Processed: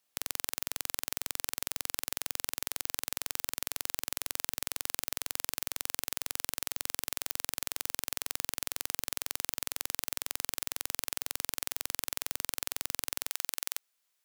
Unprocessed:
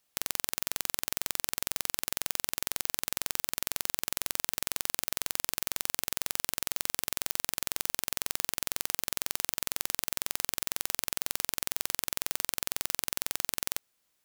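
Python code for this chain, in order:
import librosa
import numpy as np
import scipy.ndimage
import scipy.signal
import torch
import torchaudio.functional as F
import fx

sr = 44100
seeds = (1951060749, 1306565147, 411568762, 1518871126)

y = fx.highpass(x, sr, hz=fx.steps((0.0, 170.0), (13.31, 910.0)), slope=6)
y = y * 10.0 ** (-2.5 / 20.0)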